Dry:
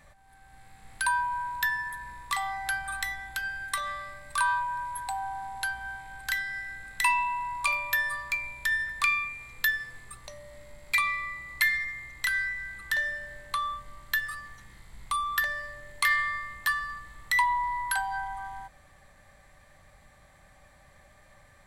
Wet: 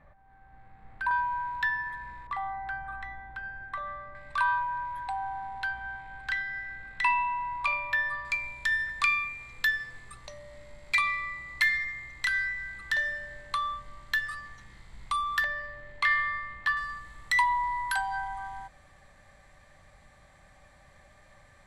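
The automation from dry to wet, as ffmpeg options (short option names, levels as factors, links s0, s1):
-af "asetnsamples=n=441:p=0,asendcmd='1.11 lowpass f 3100;2.27 lowpass f 1200;4.15 lowpass f 2900;8.25 lowpass f 6700;15.44 lowpass f 3300;16.77 lowpass f 8600',lowpass=1500"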